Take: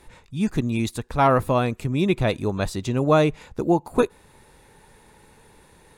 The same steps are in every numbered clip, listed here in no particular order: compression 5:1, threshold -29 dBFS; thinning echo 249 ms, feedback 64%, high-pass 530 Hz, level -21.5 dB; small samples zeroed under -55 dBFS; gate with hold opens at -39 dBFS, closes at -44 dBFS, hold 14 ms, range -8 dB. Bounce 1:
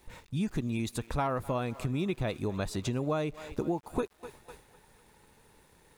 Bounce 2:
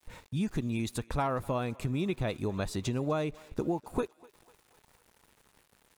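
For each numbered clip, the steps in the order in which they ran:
thinning echo > compression > small samples zeroed > gate with hold; compression > gate with hold > small samples zeroed > thinning echo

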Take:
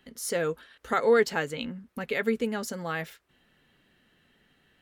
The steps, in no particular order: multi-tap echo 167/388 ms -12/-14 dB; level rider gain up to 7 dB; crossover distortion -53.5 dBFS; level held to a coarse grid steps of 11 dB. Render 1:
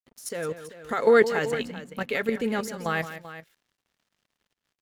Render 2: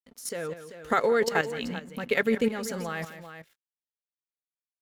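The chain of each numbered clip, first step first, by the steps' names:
level held to a coarse grid > level rider > crossover distortion > multi-tap echo; crossover distortion > level rider > multi-tap echo > level held to a coarse grid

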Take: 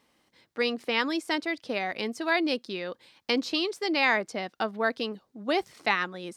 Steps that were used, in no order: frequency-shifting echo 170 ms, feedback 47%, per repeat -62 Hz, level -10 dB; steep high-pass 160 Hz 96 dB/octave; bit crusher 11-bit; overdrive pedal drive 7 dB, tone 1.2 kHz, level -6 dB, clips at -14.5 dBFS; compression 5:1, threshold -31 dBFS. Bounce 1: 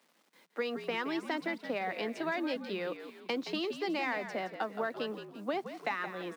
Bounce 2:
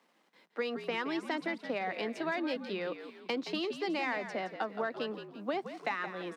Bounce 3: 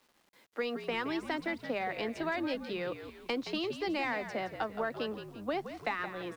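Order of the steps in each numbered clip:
overdrive pedal > compression > bit crusher > frequency-shifting echo > steep high-pass; bit crusher > overdrive pedal > compression > frequency-shifting echo > steep high-pass; steep high-pass > overdrive pedal > compression > frequency-shifting echo > bit crusher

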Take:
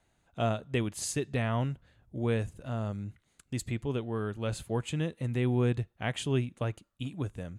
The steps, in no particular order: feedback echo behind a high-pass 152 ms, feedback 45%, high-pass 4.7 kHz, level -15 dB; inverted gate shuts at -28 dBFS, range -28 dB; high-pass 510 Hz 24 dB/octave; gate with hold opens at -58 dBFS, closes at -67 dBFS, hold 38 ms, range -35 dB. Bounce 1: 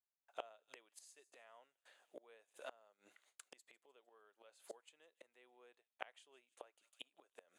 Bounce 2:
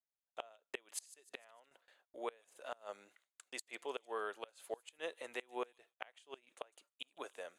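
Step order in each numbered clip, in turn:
feedback echo behind a high-pass > inverted gate > gate with hold > high-pass; high-pass > inverted gate > feedback echo behind a high-pass > gate with hold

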